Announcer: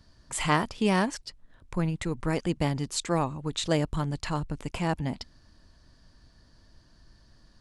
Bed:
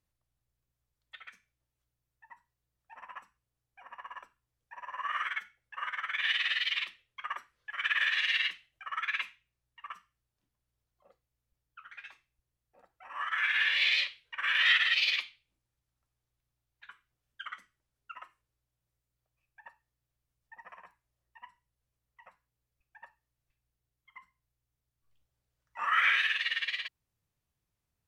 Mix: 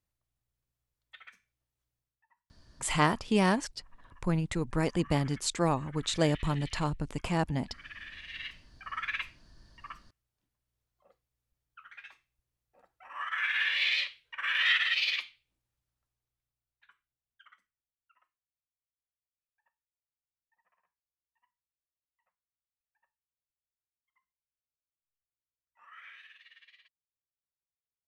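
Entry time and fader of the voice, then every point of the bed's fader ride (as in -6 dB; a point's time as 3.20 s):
2.50 s, -1.0 dB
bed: 1.99 s -2.5 dB
2.29 s -17.5 dB
8.25 s -17.5 dB
8.67 s -1.5 dB
15.81 s -1.5 dB
18.39 s -25.5 dB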